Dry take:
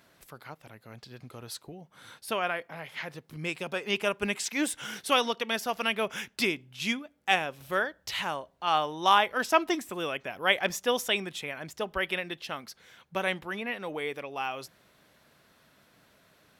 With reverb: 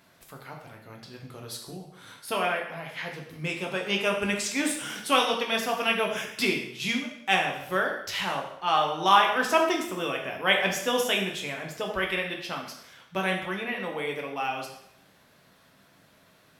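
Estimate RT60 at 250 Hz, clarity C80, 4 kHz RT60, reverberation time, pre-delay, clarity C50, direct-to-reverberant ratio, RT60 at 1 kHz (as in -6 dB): 0.75 s, 8.5 dB, 0.70 s, 0.75 s, 4 ms, 5.5 dB, 0.0 dB, 0.75 s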